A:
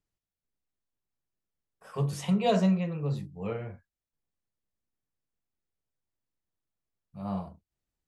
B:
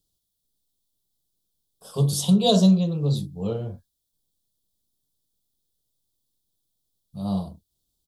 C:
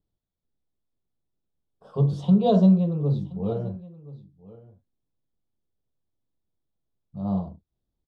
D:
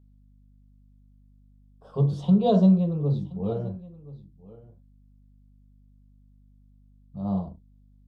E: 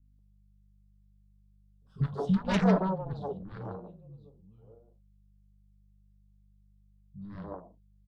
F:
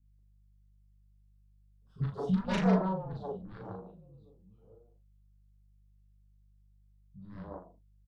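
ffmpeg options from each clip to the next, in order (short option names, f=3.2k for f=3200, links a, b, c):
-af "firequalizer=gain_entry='entry(260,0);entry(1400,-13);entry(2100,-26);entry(3400,9);entry(6500,5);entry(9700,10)':delay=0.05:min_phase=1,volume=8dB"
-af "lowpass=1.5k,aecho=1:1:1025:0.106"
-af "aeval=exprs='val(0)+0.002*(sin(2*PI*50*n/s)+sin(2*PI*2*50*n/s)/2+sin(2*PI*3*50*n/s)/3+sin(2*PI*4*50*n/s)/4+sin(2*PI*5*50*n/s)/5)':c=same,volume=-1dB"
-filter_complex "[0:a]aeval=exprs='0.335*(cos(1*acos(clip(val(0)/0.335,-1,1)))-cos(1*PI/2))+0.0944*(cos(7*acos(clip(val(0)/0.335,-1,1)))-cos(7*PI/2))':c=same,acrossover=split=250|1300[a][b][c];[c]adelay=50[d];[b]adelay=190[e];[a][e][d]amix=inputs=3:normalize=0,volume=-5.5dB"
-filter_complex "[0:a]asplit=2[a][b];[b]adelay=38,volume=-3.5dB[c];[a][c]amix=inputs=2:normalize=0,volume=-4.5dB"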